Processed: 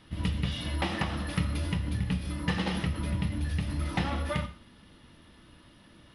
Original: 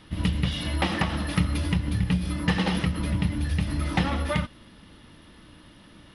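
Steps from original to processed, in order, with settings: non-linear reverb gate 0.18 s falling, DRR 8 dB; gain -5.5 dB

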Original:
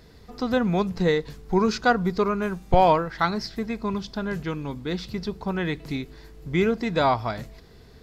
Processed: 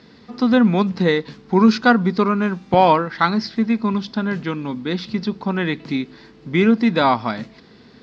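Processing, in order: speaker cabinet 180–5200 Hz, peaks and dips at 230 Hz +8 dB, 430 Hz -4 dB, 670 Hz -5 dB; gain +6.5 dB

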